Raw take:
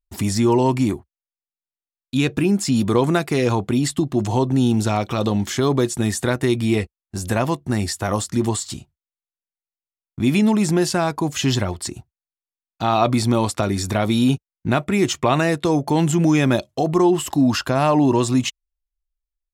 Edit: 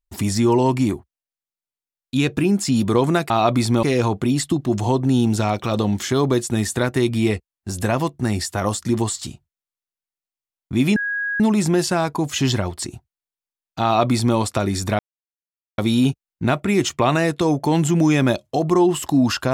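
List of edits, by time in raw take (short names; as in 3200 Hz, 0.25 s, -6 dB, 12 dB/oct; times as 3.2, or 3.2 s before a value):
10.43 add tone 1650 Hz -21 dBFS 0.44 s
12.87–13.4 copy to 3.3
14.02 insert silence 0.79 s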